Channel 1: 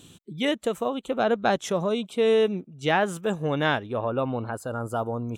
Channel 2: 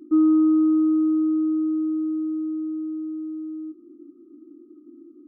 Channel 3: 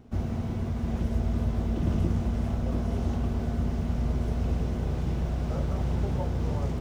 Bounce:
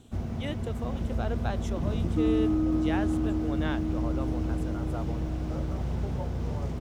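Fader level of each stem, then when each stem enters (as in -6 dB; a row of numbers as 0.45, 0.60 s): -12.0, -9.0, -3.0 dB; 0.00, 2.05, 0.00 s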